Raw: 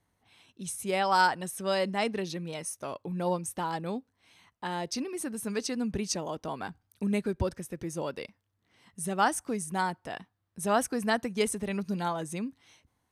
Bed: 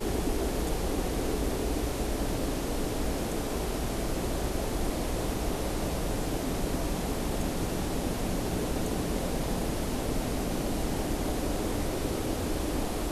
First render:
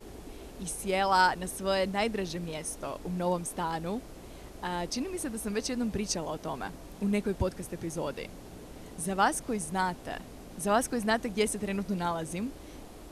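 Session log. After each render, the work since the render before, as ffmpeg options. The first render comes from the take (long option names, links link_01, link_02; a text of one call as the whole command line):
ffmpeg -i in.wav -i bed.wav -filter_complex "[1:a]volume=-16dB[link_01];[0:a][link_01]amix=inputs=2:normalize=0" out.wav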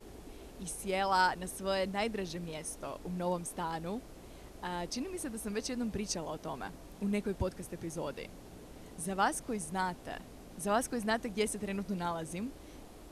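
ffmpeg -i in.wav -af "volume=-4.5dB" out.wav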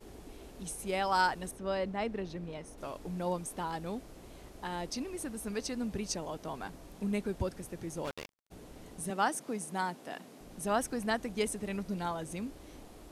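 ffmpeg -i in.wav -filter_complex "[0:a]asettb=1/sr,asplit=3[link_01][link_02][link_03];[link_01]atrim=end=1.514[link_04];[link_02]atrim=start=1.51:end=2.78,asetpts=PTS-STARTPTS,afade=type=in:duration=0.004:curve=qsin,afade=type=out:start_time=1.266:duration=0.004:curve=qsin,lowpass=frequency=1800:poles=1[link_05];[link_03]atrim=start=2.776[link_06];[link_04][link_05]acrossfade=duration=0.004:curve1=hsin:curve2=qsin[link_07];[link_07][link_06]acrossfade=duration=0.004:curve1=qsin:curve2=hsin,asplit=3[link_08][link_09][link_10];[link_08]afade=type=out:start_time=8.04:duration=0.02[link_11];[link_09]acrusher=bits=5:mix=0:aa=0.5,afade=type=in:start_time=8.04:duration=0.02,afade=type=out:start_time=8.5:duration=0.02[link_12];[link_10]afade=type=in:start_time=8.5:duration=0.02[link_13];[link_11][link_12][link_13]amix=inputs=3:normalize=0,asettb=1/sr,asplit=3[link_14][link_15][link_16];[link_14]atrim=end=9.104[link_17];[link_15]atrim=start=9.1:end=10.41,asetpts=PTS-STARTPTS,afade=type=in:duration=0.004:curve=qsin,afade=type=out:start_time=1.306:duration=0.004:curve=qsin,highpass=frequency=160:width=0.5412,highpass=frequency=160:width=1.3066[link_18];[link_16]atrim=start=10.406[link_19];[link_17][link_18]acrossfade=duration=0.004:curve1=hsin:curve2=qsin[link_20];[link_20][link_19]acrossfade=duration=0.004:curve1=qsin:curve2=hsin" out.wav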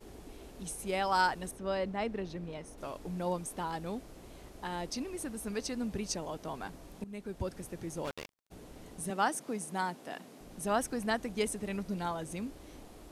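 ffmpeg -i in.wav -filter_complex "[0:a]asplit=2[link_01][link_02];[link_01]atrim=end=7.04,asetpts=PTS-STARTPTS,afade=type=out:start_time=7.036:duration=0.004:curve=hsin:silence=0.11885[link_03];[link_02]atrim=start=7.04,asetpts=PTS-STARTPTS,afade=type=in:duration=0.55:silence=0.11885[link_04];[link_03][link_04]concat=n=2:v=0:a=1" out.wav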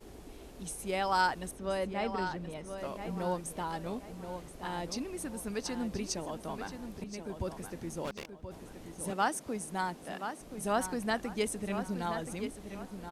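ffmpeg -i in.wav -filter_complex "[0:a]asplit=2[link_01][link_02];[link_02]adelay=1027,lowpass=frequency=4700:poles=1,volume=-8.5dB,asplit=2[link_03][link_04];[link_04]adelay=1027,lowpass=frequency=4700:poles=1,volume=0.32,asplit=2[link_05][link_06];[link_06]adelay=1027,lowpass=frequency=4700:poles=1,volume=0.32,asplit=2[link_07][link_08];[link_08]adelay=1027,lowpass=frequency=4700:poles=1,volume=0.32[link_09];[link_01][link_03][link_05][link_07][link_09]amix=inputs=5:normalize=0" out.wav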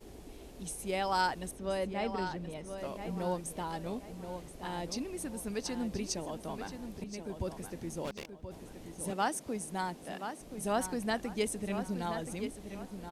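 ffmpeg -i in.wav -af "equalizer=frequency=1300:width=1.5:gain=-4" out.wav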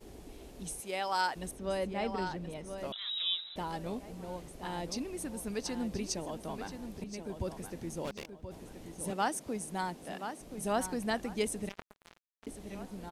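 ffmpeg -i in.wav -filter_complex "[0:a]asettb=1/sr,asplit=3[link_01][link_02][link_03];[link_01]atrim=end=0.804[link_04];[link_02]atrim=start=0.8:end=1.36,asetpts=PTS-STARTPTS,afade=type=in:duration=0.004:curve=qsin,afade=type=out:start_time=0.556:duration=0.004:curve=qsin,highpass=frequency=530:poles=1[link_05];[link_03]atrim=start=1.356[link_06];[link_04][link_05]acrossfade=duration=0.004:curve1=hsin:curve2=qsin[link_07];[link_07][link_06]acrossfade=duration=0.004:curve1=qsin:curve2=hsin,asettb=1/sr,asplit=3[link_08][link_09][link_10];[link_08]atrim=end=2.924[link_11];[link_09]atrim=start=2.92:end=3.56,asetpts=PTS-STARTPTS,afade=type=in:duration=0.004:curve=qsin,afade=type=out:start_time=0.636:duration=0.004:curve=qsin,lowpass=frequency=3400:width_type=q:width=0.5098,lowpass=frequency=3400:width_type=q:width=0.6013,lowpass=frequency=3400:width_type=q:width=0.9,lowpass=frequency=3400:width_type=q:width=2.563,afreqshift=-4000[link_12];[link_10]atrim=start=3.556[link_13];[link_11][link_12]acrossfade=duration=0.004:curve1=hsin:curve2=qsin[link_14];[link_14][link_13]acrossfade=duration=0.004:curve1=qsin:curve2=hsin,asettb=1/sr,asplit=3[link_15][link_16][link_17];[link_15]atrim=end=11.694[link_18];[link_16]atrim=start=11.69:end=12.47,asetpts=PTS-STARTPTS,afade=type=in:duration=0.004:curve=qsin,afade=type=out:start_time=0.776:duration=0.004:curve=qsin,acrusher=bits=3:mix=0:aa=0.5[link_19];[link_17]atrim=start=12.466[link_20];[link_18][link_19]acrossfade=duration=0.004:curve1=hsin:curve2=qsin[link_21];[link_21][link_20]acrossfade=duration=0.004:curve1=qsin:curve2=hsin" out.wav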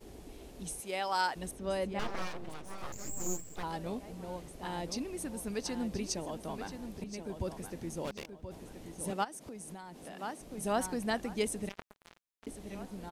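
ffmpeg -i in.wav -filter_complex "[0:a]asettb=1/sr,asplit=3[link_01][link_02][link_03];[link_01]atrim=end=1.994[link_04];[link_02]atrim=start=1.99:end=3.63,asetpts=PTS-STARTPTS,afade=type=in:duration=0.004:curve=qsin,afade=type=out:start_time=1.636:duration=0.004:curve=qsin,aeval=exprs='abs(val(0))':channel_layout=same[link_05];[link_03]atrim=start=3.626[link_06];[link_04][link_05]acrossfade=duration=0.004:curve1=hsin:curve2=qsin[link_07];[link_07][link_06]acrossfade=duration=0.004:curve1=qsin:curve2=hsin,asplit=3[link_08][link_09][link_10];[link_08]afade=type=out:start_time=9.23:duration=0.02[link_11];[link_09]acompressor=threshold=-41dB:ratio=16:attack=3.2:release=140:knee=1:detection=peak,afade=type=in:start_time=9.23:duration=0.02,afade=type=out:start_time=10.17:duration=0.02[link_12];[link_10]afade=type=in:start_time=10.17:duration=0.02[link_13];[link_11][link_12][link_13]amix=inputs=3:normalize=0" out.wav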